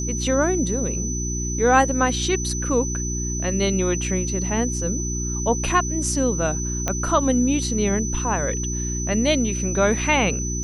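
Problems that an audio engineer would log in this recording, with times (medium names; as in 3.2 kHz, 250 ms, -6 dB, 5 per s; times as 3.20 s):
hum 60 Hz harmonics 6 -27 dBFS
whine 6 kHz -28 dBFS
6.88 s: pop -8 dBFS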